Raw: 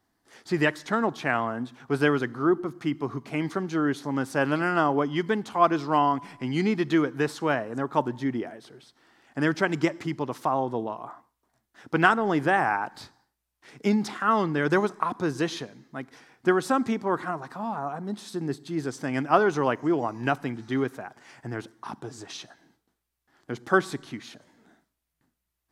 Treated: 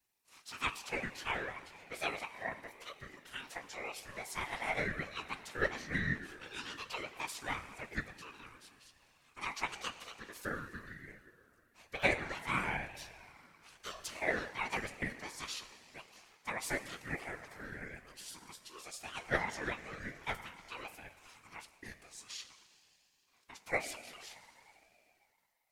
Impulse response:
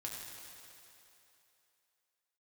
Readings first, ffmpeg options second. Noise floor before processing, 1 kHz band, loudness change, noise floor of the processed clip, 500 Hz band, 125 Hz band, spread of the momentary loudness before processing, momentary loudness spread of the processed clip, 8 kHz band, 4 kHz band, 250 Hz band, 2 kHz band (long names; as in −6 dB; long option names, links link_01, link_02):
−82 dBFS, −16.0 dB, −13.5 dB, −72 dBFS, −17.0 dB, −15.0 dB, 16 LU, 18 LU, −2.5 dB, −5.5 dB, −21.5 dB, −8.0 dB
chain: -filter_complex "[0:a]asplit=2[link_01][link_02];[1:a]atrim=start_sample=2205,adelay=18[link_03];[link_02][link_03]afir=irnorm=-1:irlink=0,volume=-9dB[link_04];[link_01][link_04]amix=inputs=2:normalize=0,flanger=delay=6.5:depth=4.8:regen=57:speed=0.12:shape=sinusoidal,aderivative,afftfilt=real='hypot(re,im)*cos(2*PI*random(0))':imag='hypot(re,im)*sin(2*PI*random(1))':win_size=512:overlap=0.75,equalizer=frequency=1100:width=0.6:gain=8.5,aeval=exprs='val(0)*sin(2*PI*730*n/s+730*0.2/1*sin(2*PI*1*n/s))':channel_layout=same,volume=10dB"